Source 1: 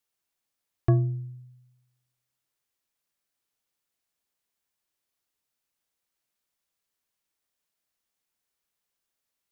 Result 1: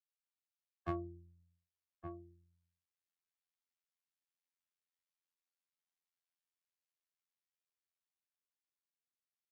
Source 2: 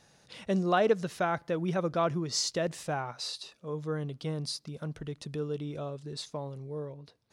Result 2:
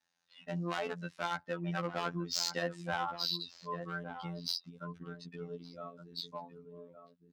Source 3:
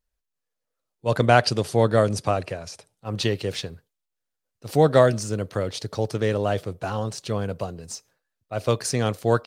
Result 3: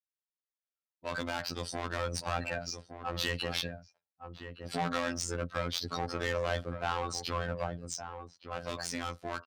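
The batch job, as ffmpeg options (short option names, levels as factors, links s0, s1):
-filter_complex "[0:a]equalizer=f=440:w=1.2:g=-11,afftdn=nr=21:nf=-38,acrossover=split=160[s0][s1];[s1]acompressor=threshold=0.0447:ratio=2.5[s2];[s0][s2]amix=inputs=2:normalize=0,aecho=1:1:3.8:0.31,asplit=2[s3][s4];[s4]highpass=f=720:p=1,volume=7.94,asoftclip=type=tanh:threshold=0.2[s5];[s3][s5]amix=inputs=2:normalize=0,lowpass=f=5900:p=1,volume=0.501,acrossover=split=170[s6][s7];[s7]asoftclip=type=hard:threshold=0.0531[s8];[s6][s8]amix=inputs=2:normalize=0,dynaudnorm=f=190:g=21:m=1.58,highpass=48,asplit=2[s9][s10];[s10]adelay=1166,volume=0.355,highshelf=f=4000:g=-26.2[s11];[s9][s11]amix=inputs=2:normalize=0,asoftclip=type=tanh:threshold=0.15,afftfilt=real='hypot(re,im)*cos(PI*b)':imag='0':win_size=2048:overlap=0.75,highshelf=f=9500:g=-8.5,volume=0.631"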